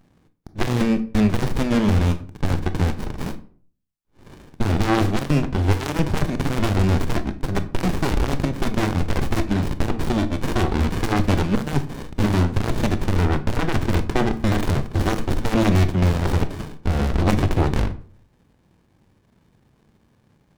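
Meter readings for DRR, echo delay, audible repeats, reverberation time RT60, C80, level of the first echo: 11.0 dB, none, none, 0.50 s, 19.5 dB, none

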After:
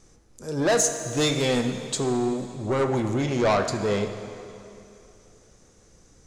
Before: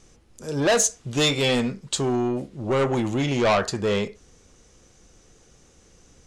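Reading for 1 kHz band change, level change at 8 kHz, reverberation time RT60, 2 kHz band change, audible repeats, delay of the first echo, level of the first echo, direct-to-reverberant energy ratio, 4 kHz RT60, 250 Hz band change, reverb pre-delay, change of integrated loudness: -1.0 dB, -1.0 dB, 2.8 s, -3.0 dB, none, none, none, 7.5 dB, 2.6 s, -1.0 dB, 5 ms, -1.5 dB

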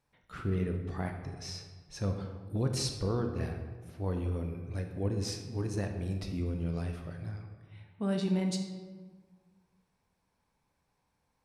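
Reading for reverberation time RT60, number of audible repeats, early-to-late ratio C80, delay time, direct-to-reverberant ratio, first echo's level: 1.5 s, none, 8.0 dB, none, 4.0 dB, none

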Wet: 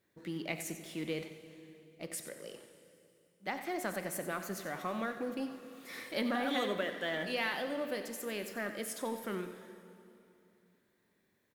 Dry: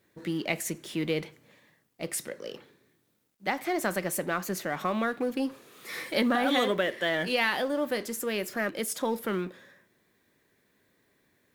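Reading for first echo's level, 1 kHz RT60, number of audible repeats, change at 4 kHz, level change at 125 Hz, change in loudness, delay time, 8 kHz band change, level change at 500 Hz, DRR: -12.0 dB, 2.8 s, 1, -8.0 dB, -8.0 dB, -8.0 dB, 91 ms, -8.0 dB, -8.0 dB, 7.5 dB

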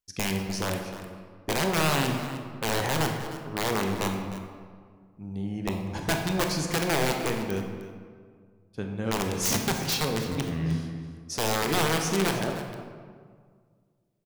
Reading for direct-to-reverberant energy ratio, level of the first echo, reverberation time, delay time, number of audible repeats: 2.5 dB, -14.0 dB, 1.9 s, 0.306 s, 1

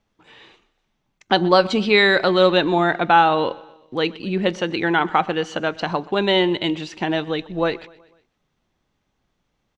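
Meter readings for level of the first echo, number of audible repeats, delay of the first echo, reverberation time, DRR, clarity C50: -22.0 dB, 3, 0.124 s, none, none, none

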